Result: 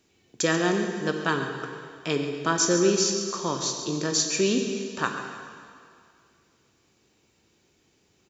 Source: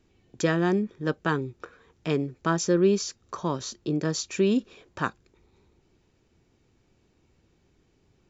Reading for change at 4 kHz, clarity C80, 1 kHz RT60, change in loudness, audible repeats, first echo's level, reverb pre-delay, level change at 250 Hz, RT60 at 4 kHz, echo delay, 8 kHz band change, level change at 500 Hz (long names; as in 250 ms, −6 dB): +8.0 dB, 5.5 dB, 2.2 s, +1.5 dB, 2, −13.0 dB, 14 ms, −0.5 dB, 2.1 s, 138 ms, can't be measured, +0.5 dB